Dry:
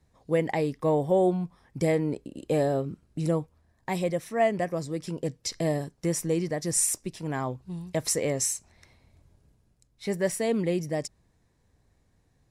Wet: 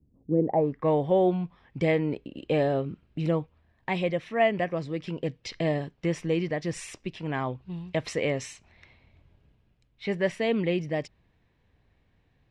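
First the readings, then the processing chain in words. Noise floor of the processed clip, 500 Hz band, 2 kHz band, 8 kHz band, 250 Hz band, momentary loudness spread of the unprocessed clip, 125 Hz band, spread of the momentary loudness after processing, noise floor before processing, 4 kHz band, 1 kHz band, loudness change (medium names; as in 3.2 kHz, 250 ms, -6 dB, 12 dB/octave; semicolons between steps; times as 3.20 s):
-68 dBFS, +0.5 dB, +3.5 dB, -16.5 dB, +0.5 dB, 10 LU, 0.0 dB, 12 LU, -68 dBFS, -0.5 dB, +1.0 dB, 0.0 dB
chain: low-pass sweep 280 Hz -> 2.9 kHz, 0.33–0.92 s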